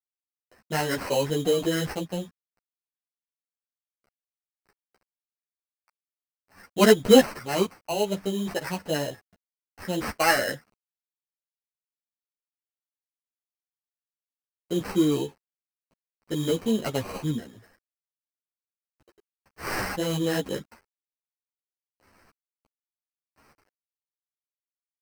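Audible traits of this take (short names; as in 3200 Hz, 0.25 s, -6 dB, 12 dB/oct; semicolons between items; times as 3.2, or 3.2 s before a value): a quantiser's noise floor 10-bit, dither none; tremolo saw up 0.52 Hz, depth 35%; aliases and images of a low sample rate 3500 Hz, jitter 0%; a shimmering, thickened sound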